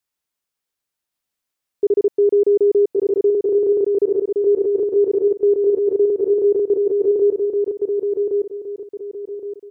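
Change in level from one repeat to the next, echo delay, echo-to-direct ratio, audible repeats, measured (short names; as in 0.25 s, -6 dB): -9.5 dB, 1.117 s, -3.5 dB, 3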